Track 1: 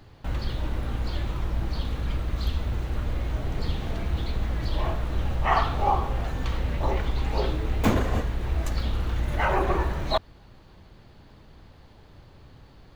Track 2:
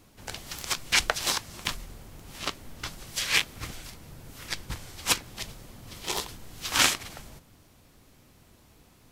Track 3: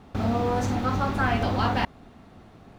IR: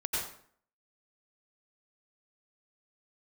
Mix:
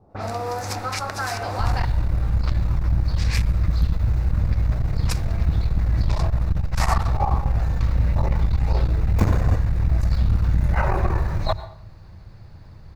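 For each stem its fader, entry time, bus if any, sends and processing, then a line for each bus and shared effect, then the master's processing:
+0.5 dB, 1.35 s, no bus, send -18 dB, tone controls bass +6 dB, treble -1 dB
-2.0 dB, 0.00 s, bus A, no send, none
+2.5 dB, 0.00 s, bus A, send -21 dB, tone controls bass -13 dB, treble -1 dB
bus A: 0.0 dB, level-controlled noise filter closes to 460 Hz, open at -26 dBFS; compression, threshold -24 dBFS, peak gain reduction 7 dB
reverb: on, RT60 0.55 s, pre-delay 82 ms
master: graphic EQ with 31 bands 100 Hz +8 dB, 250 Hz -11 dB, 400 Hz -5 dB, 3.15 kHz -11 dB, 5 kHz +4 dB; transformer saturation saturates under 140 Hz

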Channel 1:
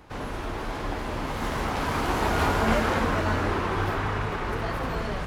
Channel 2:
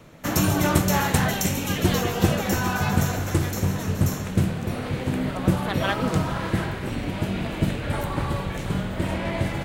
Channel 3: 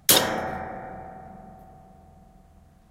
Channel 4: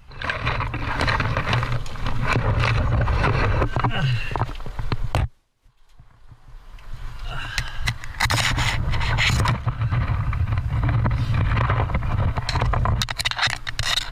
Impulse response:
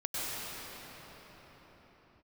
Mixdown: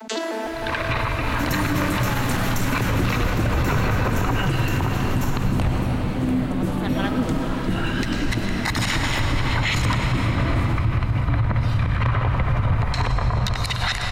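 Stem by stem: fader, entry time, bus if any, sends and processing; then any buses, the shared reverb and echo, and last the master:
-3.0 dB, 0.00 s, send -6.5 dB, high-pass 1.4 kHz 24 dB/octave; treble shelf 11 kHz +10.5 dB
-4.5 dB, 1.15 s, send -11 dB, peaking EQ 270 Hz +10 dB 0.56 oct
-8.0 dB, 0.00 s, send -12 dB, vocoder on a broken chord bare fifth, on A3, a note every 154 ms; Chebyshev high-pass 250 Hz, order 5; level flattener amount 70%
0.0 dB, 0.45 s, send -9.5 dB, none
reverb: on, pre-delay 92 ms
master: peak limiter -12.5 dBFS, peak gain reduction 10 dB

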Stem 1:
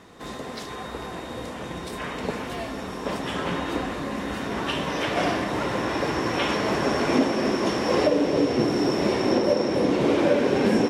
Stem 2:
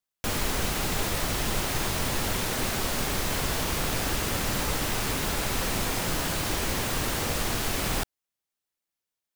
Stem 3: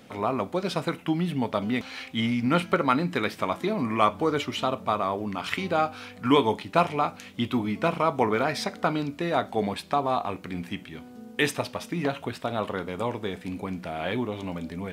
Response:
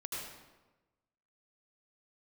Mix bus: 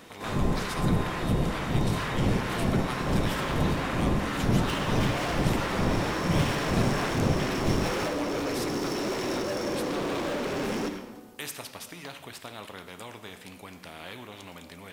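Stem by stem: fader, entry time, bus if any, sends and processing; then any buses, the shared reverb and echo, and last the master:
-5.5 dB, 0.00 s, send -3.5 dB, overload inside the chain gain 27 dB
+0.5 dB, 0.00 s, send -8.5 dB, harmonic tremolo 2.2 Hz, depth 100%, crossover 890 Hz; low-pass 1.8 kHz 12 dB/octave; peaking EQ 160 Hz +10.5 dB 1.5 oct
-15.5 dB, 0.00 s, send -10.5 dB, spectrum-flattening compressor 2:1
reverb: on, RT60 1.2 s, pre-delay 72 ms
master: treble shelf 8.4 kHz +6 dB

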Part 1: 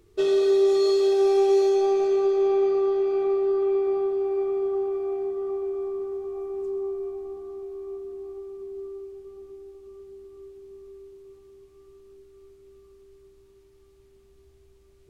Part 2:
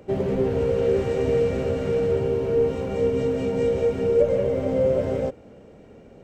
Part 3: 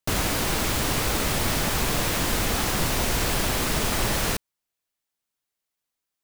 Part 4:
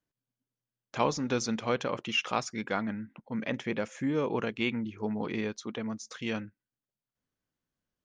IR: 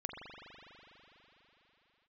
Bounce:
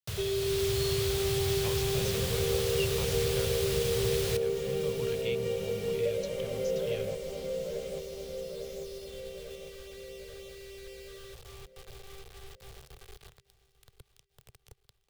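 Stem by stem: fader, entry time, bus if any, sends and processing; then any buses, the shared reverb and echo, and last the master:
+2.5 dB, 0.00 s, no send, echo send -22.5 dB, bit crusher 8-bit
+2.5 dB, 1.85 s, no send, echo send -5 dB, steep high-pass 160 Hz 96 dB/octave
-9.0 dB, 0.00 s, no send, echo send -17 dB, high-pass 76 Hz; level rider gain up to 10 dB
0.0 dB, 0.65 s, no send, no echo send, none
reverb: none
echo: feedback delay 846 ms, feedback 47%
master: FFT filter 130 Hz 0 dB, 280 Hz -29 dB, 420 Hz -11 dB, 820 Hz -19 dB, 2 kHz -13 dB, 3.4 kHz -5 dB, 6.5 kHz -9 dB; three bands compressed up and down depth 40%

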